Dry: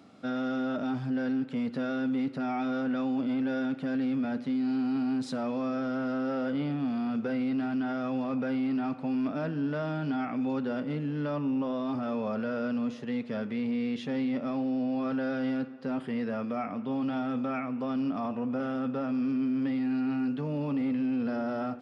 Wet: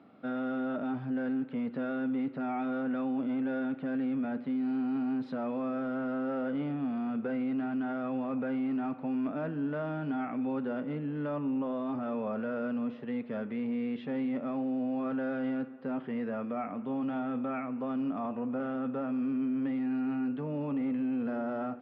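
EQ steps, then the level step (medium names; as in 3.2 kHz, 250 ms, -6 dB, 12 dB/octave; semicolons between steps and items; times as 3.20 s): high-pass 190 Hz 6 dB/octave; distance through air 390 m; tone controls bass 0 dB, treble -3 dB; 0.0 dB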